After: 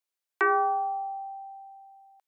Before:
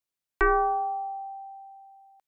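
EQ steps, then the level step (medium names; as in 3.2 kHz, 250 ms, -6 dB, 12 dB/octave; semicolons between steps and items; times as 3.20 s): high-pass 410 Hz 12 dB/octave; 0.0 dB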